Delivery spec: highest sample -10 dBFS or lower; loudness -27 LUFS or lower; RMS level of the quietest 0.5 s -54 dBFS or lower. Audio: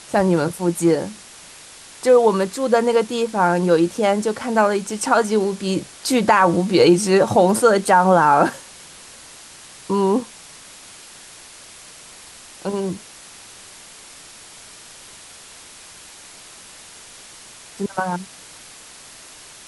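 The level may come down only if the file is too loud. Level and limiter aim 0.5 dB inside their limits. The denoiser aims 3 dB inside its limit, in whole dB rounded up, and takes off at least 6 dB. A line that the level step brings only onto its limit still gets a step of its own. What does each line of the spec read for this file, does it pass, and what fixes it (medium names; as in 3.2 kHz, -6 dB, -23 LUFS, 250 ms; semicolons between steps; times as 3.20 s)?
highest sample -4.0 dBFS: fail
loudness -18.0 LUFS: fail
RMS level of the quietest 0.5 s -42 dBFS: fail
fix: noise reduction 6 dB, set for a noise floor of -42 dBFS; trim -9.5 dB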